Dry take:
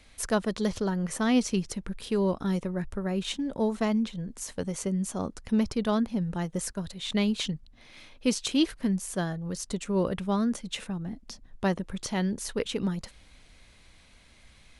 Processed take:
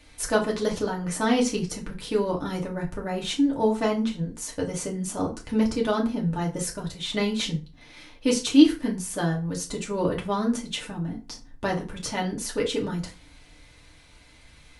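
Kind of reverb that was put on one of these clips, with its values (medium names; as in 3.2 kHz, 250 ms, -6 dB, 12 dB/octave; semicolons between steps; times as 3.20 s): FDN reverb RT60 0.33 s, low-frequency decay 1.05×, high-frequency decay 0.75×, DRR -2.5 dB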